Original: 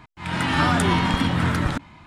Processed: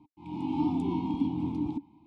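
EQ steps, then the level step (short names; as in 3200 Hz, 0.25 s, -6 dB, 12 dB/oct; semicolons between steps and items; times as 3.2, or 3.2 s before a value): vowel filter u; Butterworth band-stop 1700 Hz, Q 0.7; low shelf 180 Hz +10.5 dB; 0.0 dB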